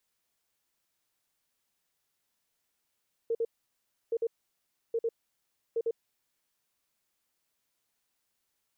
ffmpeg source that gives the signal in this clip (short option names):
-f lavfi -i "aevalsrc='0.0501*sin(2*PI*459*t)*clip(min(mod(mod(t,0.82),0.1),0.05-mod(mod(t,0.82),0.1))/0.005,0,1)*lt(mod(t,0.82),0.2)':d=3.28:s=44100"